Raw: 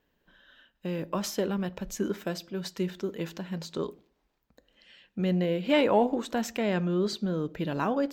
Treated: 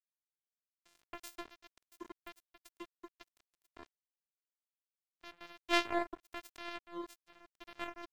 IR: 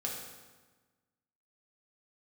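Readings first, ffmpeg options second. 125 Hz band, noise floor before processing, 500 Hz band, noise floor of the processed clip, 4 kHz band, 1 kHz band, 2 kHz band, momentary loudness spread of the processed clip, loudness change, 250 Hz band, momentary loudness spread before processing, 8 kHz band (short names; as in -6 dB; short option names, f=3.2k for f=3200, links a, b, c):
-35.5 dB, -75 dBFS, -17.0 dB, under -85 dBFS, -6.5 dB, -9.5 dB, -4.5 dB, 24 LU, -10.0 dB, -18.5 dB, 11 LU, -14.0 dB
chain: -af "afftfilt=real='hypot(re,im)*cos(PI*b)':imag='0':win_size=512:overlap=0.75,aeval=exprs='0.224*(cos(1*acos(clip(val(0)/0.224,-1,1)))-cos(1*PI/2))+0.0562*(cos(3*acos(clip(val(0)/0.224,-1,1)))-cos(3*PI/2))+0.00282*(cos(5*acos(clip(val(0)/0.224,-1,1)))-cos(5*PI/2))+0.00316*(cos(7*acos(clip(val(0)/0.224,-1,1)))-cos(7*PI/2))':c=same,aeval=exprs='sgn(val(0))*max(abs(val(0))-0.0075,0)':c=same,volume=1.5dB"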